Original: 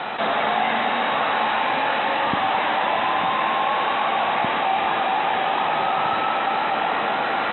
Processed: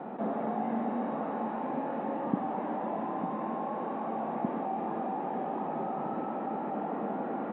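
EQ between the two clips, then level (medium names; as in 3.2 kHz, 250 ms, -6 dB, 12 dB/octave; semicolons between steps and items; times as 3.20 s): ladder band-pass 260 Hz, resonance 40%; +8.0 dB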